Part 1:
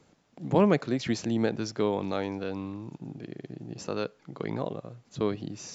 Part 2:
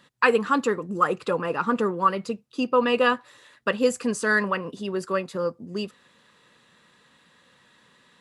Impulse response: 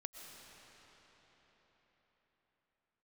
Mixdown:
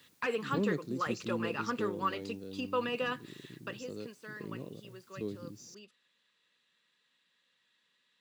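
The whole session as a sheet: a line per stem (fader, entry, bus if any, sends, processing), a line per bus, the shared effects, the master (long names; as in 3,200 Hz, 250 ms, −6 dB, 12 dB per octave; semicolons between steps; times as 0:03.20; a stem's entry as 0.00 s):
−9.0 dB, 0.00 s, no send, flat-topped bell 1,400 Hz −15.5 dB 2.7 octaves; bit-depth reduction 10 bits, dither triangular
0:03.56 −11.5 dB → 0:03.91 −23.5 dB, 0.00 s, no send, meter weighting curve D; de-essing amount 85%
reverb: not used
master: high-pass filter 62 Hz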